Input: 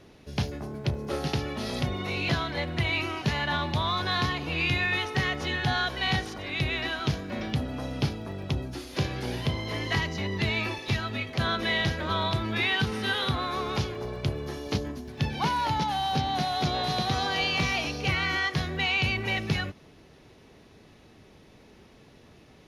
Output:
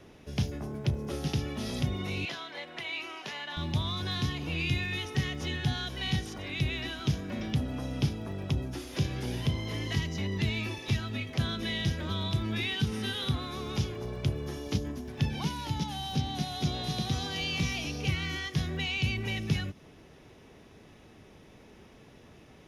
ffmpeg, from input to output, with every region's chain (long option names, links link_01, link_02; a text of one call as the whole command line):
ffmpeg -i in.wav -filter_complex "[0:a]asettb=1/sr,asplit=3[link_01][link_02][link_03];[link_01]atrim=end=2.254[link_04];[link_02]atrim=start=2.25:end=3.57,asetpts=PTS-STARTPTS,afade=type=in:duration=0.004:curve=qsin,afade=type=out:start_time=1.316:duration=0.004:curve=qsin,highpass=570,highshelf=frequency=6500:gain=-10[link_05];[link_03]atrim=start=3.566[link_06];[link_04][link_05]acrossfade=duration=0.004:curve1=hsin:curve2=qsin[link_07];[link_07][link_06]acrossfade=duration=0.004:curve1=qsin:curve2=hsin,equalizer=frequency=4300:width_type=o:width=0.21:gain=-8,acrossover=split=340|3000[link_08][link_09][link_10];[link_09]acompressor=threshold=-42dB:ratio=6[link_11];[link_08][link_11][link_10]amix=inputs=3:normalize=0" out.wav